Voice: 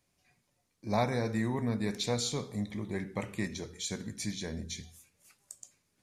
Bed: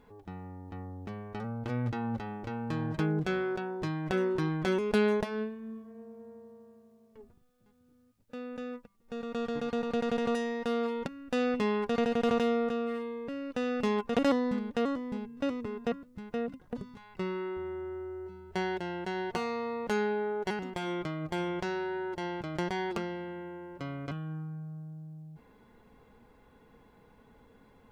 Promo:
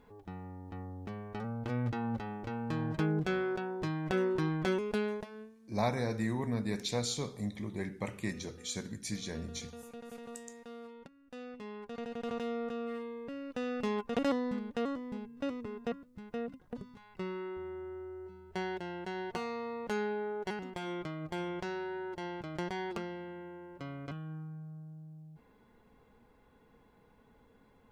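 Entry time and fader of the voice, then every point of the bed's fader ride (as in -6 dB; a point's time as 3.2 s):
4.85 s, -2.0 dB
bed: 4.66 s -1.5 dB
5.57 s -17 dB
11.55 s -17 dB
12.96 s -4.5 dB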